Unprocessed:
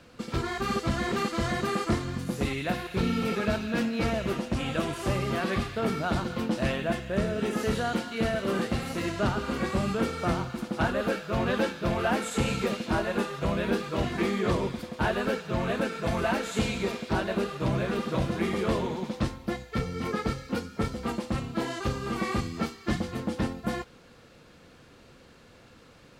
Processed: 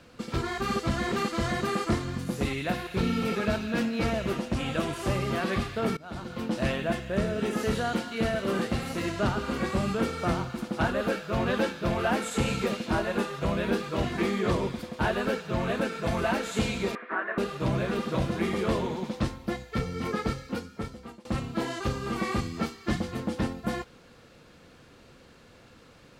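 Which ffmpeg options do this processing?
-filter_complex "[0:a]asettb=1/sr,asplit=3[s0][s1][s2];[s0]atrim=end=16.954[s3];[s1]atrim=start=16.95:end=17.38,asetpts=PTS-STARTPTS,afade=t=in:d=0.004:c=qsin,afade=t=out:st=0.426:d=0.004:c=qsin,highpass=f=330:w=0.5412,highpass=f=330:w=1.3066,equalizer=f=370:t=q:w=4:g=-7,equalizer=f=550:t=q:w=4:g=-8,equalizer=f=840:t=q:w=4:g=-7,equalizer=f=1200:t=q:w=4:g=7,equalizer=f=1800:t=q:w=4:g=9,lowpass=f=2000:w=0.5412,lowpass=f=2000:w=1.3066[s4];[s2]atrim=start=17.376[s5];[s3][s4]acrossfade=d=0.004:c1=hsin:c2=qsin[s6];[s6][s5]acrossfade=d=0.004:c1=qsin:c2=hsin,asplit=3[s7][s8][s9];[s7]atrim=end=5.97,asetpts=PTS-STARTPTS,afade=t=out:st=5.966:d=0.004:c=hsin:silence=0.0630957[s10];[s8]atrim=start=5.97:end=21.25,asetpts=PTS-STARTPTS,afade=t=in:d=0.65:silence=0.0630957,afade=t=out:st=14.33:d=0.95:silence=0.0707946[s11];[s9]atrim=start=21.25,asetpts=PTS-STARTPTS,afade=t=in:d=0.004:c=hsin:silence=0.0707946[s12];[s10][s11][s12]concat=n=3:v=0:a=1"

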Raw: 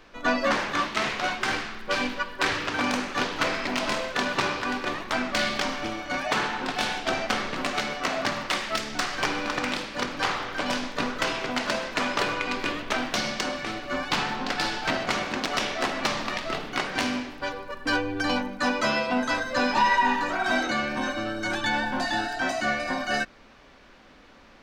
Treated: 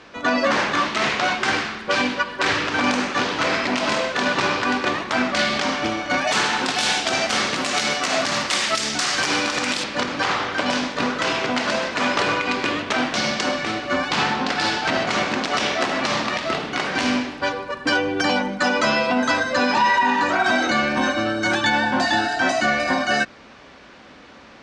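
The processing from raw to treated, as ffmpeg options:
-filter_complex "[0:a]asettb=1/sr,asplit=3[s0][s1][s2];[s0]atrim=end=6.274[s3];[s1]atrim=start=6.27:end=9.84,asetpts=PTS-STARTPTS,afade=t=in:d=0.004:c=qsin,afade=t=out:st=3.566:d=0.004:c=qsin,aemphasis=mode=production:type=75fm[s4];[s2]atrim=start=9.836[s5];[s3][s4]acrossfade=d=0.004:c1=hsin:c2=qsin[s6];[s6][s5]acrossfade=d=0.004:c1=qsin:c2=hsin,asettb=1/sr,asplit=3[s7][s8][s9];[s7]atrim=end=17.884[s10];[s8]atrim=start=17.88:end=18.77,asetpts=PTS-STARTPTS,afade=t=in:d=0.004:c=qsin,afade=t=out:st=0.886:d=0.004:c=qsin,aecho=1:1:5.5:0.54,atrim=end_sample=39249[s11];[s9]atrim=start=18.766[s12];[s10][s11]acrossfade=d=0.004:c1=hsin:c2=qsin[s13];[s13][s12]acrossfade=d=0.004:c1=qsin:c2=hsin,lowpass=f=8700:w=0.5412,lowpass=f=8700:w=1.3066,alimiter=limit=0.133:level=0:latency=1:release=80,highpass=76,volume=2.51"

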